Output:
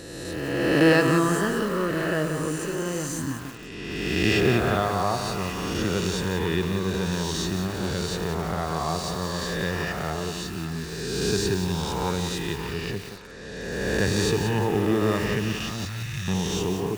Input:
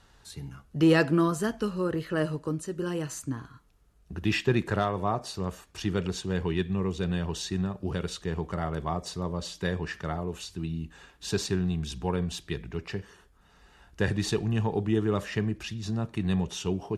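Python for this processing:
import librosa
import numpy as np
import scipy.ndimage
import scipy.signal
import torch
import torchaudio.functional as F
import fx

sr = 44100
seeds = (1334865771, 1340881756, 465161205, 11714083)

p1 = fx.spec_swells(x, sr, rise_s=1.91)
p2 = fx.ellip_bandstop(p1, sr, low_hz=150.0, high_hz=1500.0, order=3, stop_db=40, at=(15.85, 16.28))
p3 = p2 + fx.echo_stepped(p2, sr, ms=576, hz=1200.0, octaves=0.7, feedback_pct=70, wet_db=-9, dry=0)
y = fx.echo_crushed(p3, sr, ms=177, feedback_pct=35, bits=6, wet_db=-6.5)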